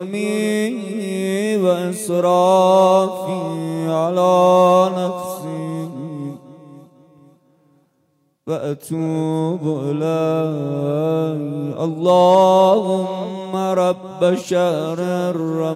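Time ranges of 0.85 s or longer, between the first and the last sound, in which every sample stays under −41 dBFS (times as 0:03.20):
0:07.33–0:08.47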